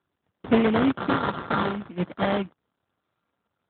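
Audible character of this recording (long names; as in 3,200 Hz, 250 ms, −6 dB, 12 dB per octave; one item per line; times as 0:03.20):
a buzz of ramps at a fixed pitch in blocks of 32 samples
phaser sweep stages 2, 0.55 Hz, lowest notch 360–1,700 Hz
aliases and images of a low sample rate 2,600 Hz, jitter 20%
AMR narrowband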